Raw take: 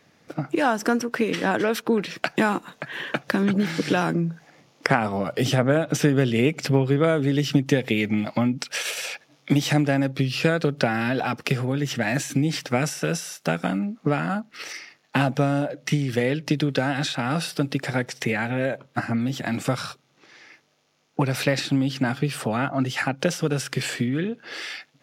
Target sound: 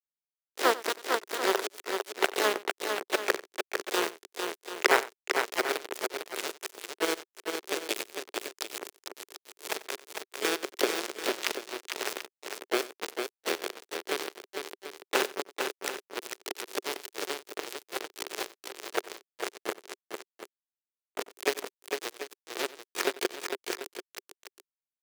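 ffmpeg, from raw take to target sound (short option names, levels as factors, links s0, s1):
-filter_complex "[0:a]agate=range=0.0224:threshold=0.00708:ratio=3:detection=peak,acrossover=split=750[s0][s1];[s0]acompressor=threshold=0.0282:ratio=4[s2];[s2][s1]amix=inputs=2:normalize=0,aeval=exprs='val(0)*gte(abs(val(0)),0.133)':c=same,asplit=4[s3][s4][s5][s6];[s4]asetrate=29433,aresample=44100,atempo=1.49831,volume=0.158[s7];[s5]asetrate=33038,aresample=44100,atempo=1.33484,volume=0.224[s8];[s6]asetrate=58866,aresample=44100,atempo=0.749154,volume=0.501[s9];[s3][s7][s8][s9]amix=inputs=4:normalize=0,highpass=f=390:t=q:w=4.7,aecho=1:1:92|452|738:0.126|0.531|0.266,volume=0.891"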